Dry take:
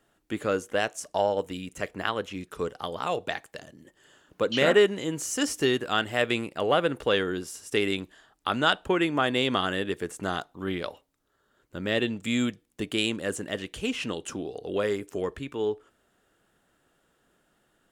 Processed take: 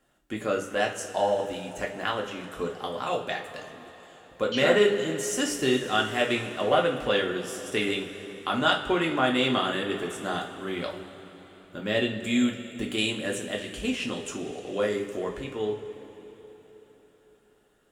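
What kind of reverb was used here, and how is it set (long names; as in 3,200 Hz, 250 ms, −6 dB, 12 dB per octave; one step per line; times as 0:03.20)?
coupled-rooms reverb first 0.29 s, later 4.1 s, from −18 dB, DRR −1 dB
level −3 dB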